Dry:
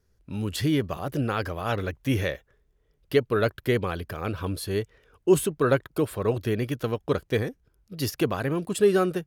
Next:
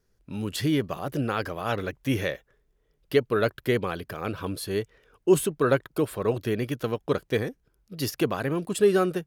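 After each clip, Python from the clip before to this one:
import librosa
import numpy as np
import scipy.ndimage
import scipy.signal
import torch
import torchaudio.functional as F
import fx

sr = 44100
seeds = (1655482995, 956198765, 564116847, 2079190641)

y = fx.peak_eq(x, sr, hz=75.0, db=-10.5, octaves=0.75)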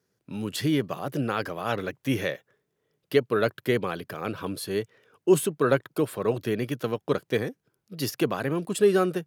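y = scipy.signal.sosfilt(scipy.signal.butter(4, 110.0, 'highpass', fs=sr, output='sos'), x)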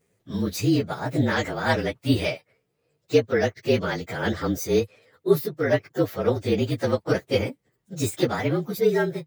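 y = fx.partial_stretch(x, sr, pct=113)
y = fx.rider(y, sr, range_db=4, speed_s=0.5)
y = y * 10.0 ** (5.5 / 20.0)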